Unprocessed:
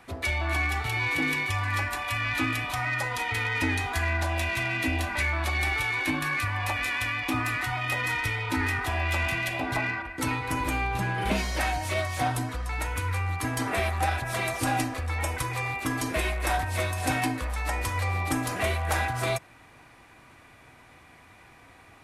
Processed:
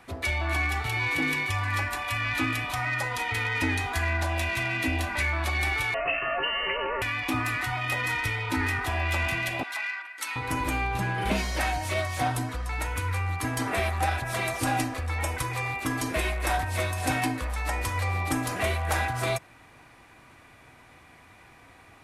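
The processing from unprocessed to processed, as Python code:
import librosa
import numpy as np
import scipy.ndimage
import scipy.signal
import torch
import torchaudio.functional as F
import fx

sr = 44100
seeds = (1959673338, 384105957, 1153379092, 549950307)

y = fx.freq_invert(x, sr, carrier_hz=2900, at=(5.94, 7.02))
y = fx.highpass(y, sr, hz=1500.0, slope=12, at=(9.63, 10.36))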